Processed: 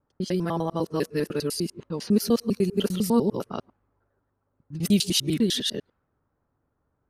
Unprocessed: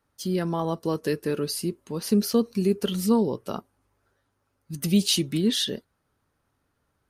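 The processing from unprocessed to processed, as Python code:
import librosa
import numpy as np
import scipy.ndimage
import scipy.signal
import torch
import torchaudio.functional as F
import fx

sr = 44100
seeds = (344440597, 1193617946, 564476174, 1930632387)

y = fx.local_reverse(x, sr, ms=100.0)
y = fx.env_lowpass(y, sr, base_hz=1100.0, full_db=-23.0)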